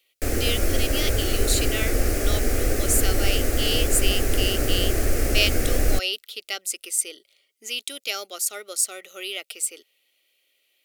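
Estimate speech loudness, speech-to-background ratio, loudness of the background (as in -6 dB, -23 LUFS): -27.0 LUFS, -2.0 dB, -25.0 LUFS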